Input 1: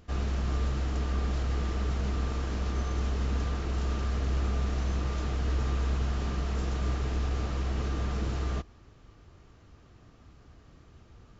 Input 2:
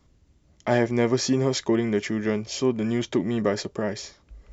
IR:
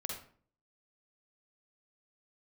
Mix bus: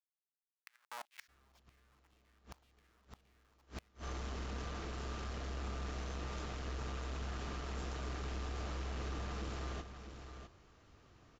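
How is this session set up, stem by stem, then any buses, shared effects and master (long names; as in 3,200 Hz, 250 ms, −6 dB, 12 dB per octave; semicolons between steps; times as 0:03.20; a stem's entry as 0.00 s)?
−3.5 dB, 1.20 s, no send, echo send −9 dB, soft clipping −25.5 dBFS, distortion −17 dB
−9.5 dB, 0.00 s, no send, no echo send, brick-wall band-stop 330–1,000 Hz; comparator with hysteresis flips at −25 dBFS; auto-filter high-pass saw down 1.9 Hz 720–3,100 Hz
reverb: not used
echo: single-tap delay 654 ms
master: low-shelf EQ 310 Hz −8 dB; gate with flip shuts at −32 dBFS, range −30 dB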